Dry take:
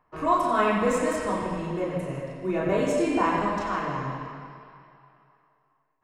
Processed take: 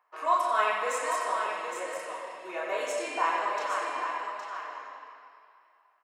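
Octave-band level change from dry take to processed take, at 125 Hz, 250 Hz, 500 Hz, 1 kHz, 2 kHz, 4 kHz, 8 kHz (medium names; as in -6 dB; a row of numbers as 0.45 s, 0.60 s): under -35 dB, -20.5 dB, -6.5 dB, -1.0 dB, 0.0 dB, +0.5 dB, +1.0 dB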